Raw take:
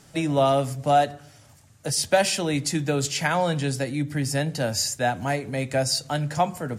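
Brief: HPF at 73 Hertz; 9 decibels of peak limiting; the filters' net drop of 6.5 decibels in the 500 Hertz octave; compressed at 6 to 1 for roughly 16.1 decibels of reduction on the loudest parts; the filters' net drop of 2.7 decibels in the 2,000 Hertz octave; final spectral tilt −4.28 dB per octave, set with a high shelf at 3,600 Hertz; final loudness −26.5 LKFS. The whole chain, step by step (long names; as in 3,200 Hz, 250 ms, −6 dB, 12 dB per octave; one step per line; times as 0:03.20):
high-pass filter 73 Hz
parametric band 500 Hz −8.5 dB
parametric band 2,000 Hz −4 dB
high-shelf EQ 3,600 Hz +3.5 dB
downward compressor 6 to 1, threshold −37 dBFS
level +15.5 dB
brickwall limiter −17.5 dBFS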